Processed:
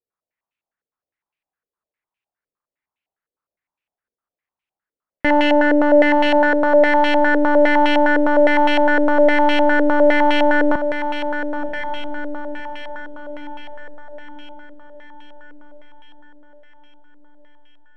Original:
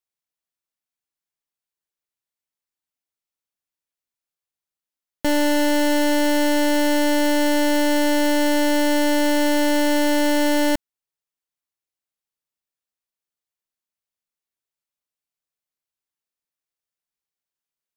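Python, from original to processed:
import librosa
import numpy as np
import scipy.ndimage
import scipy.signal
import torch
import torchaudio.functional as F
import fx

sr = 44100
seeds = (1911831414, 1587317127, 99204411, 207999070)

y = fx.echo_diffused(x, sr, ms=1059, feedback_pct=51, wet_db=-8)
y = fx.filter_held_lowpass(y, sr, hz=9.8, low_hz=470.0, high_hz=2600.0)
y = y * 10.0 ** (2.0 / 20.0)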